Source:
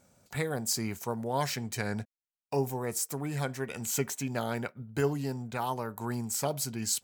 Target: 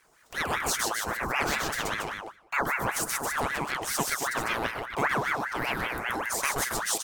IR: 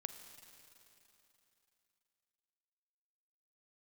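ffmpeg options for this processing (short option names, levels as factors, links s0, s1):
-filter_complex "[0:a]aecho=1:1:128.3|277:0.794|0.501,asplit=2[s0][s1];[1:a]atrim=start_sample=2205,afade=t=out:st=0.38:d=0.01,atrim=end_sample=17199[s2];[s1][s2]afir=irnorm=-1:irlink=0,volume=0.75[s3];[s0][s3]amix=inputs=2:normalize=0,aeval=exprs='val(0)*sin(2*PI*1200*n/s+1200*0.55/5.1*sin(2*PI*5.1*n/s))':c=same"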